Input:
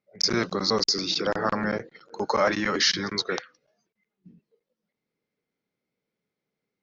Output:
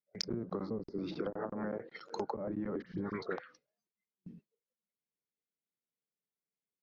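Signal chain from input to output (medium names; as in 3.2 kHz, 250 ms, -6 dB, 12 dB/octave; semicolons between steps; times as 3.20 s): gate with hold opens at -45 dBFS; low-pass that closes with the level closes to 330 Hz, closed at -20.5 dBFS; 1.30–2.15 s: bass shelf 200 Hz -11 dB; compression, threshold -36 dBFS, peak gain reduction 13 dB; 2.82–3.36 s: phase dispersion highs, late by 50 ms, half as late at 1.9 kHz; trim +1.5 dB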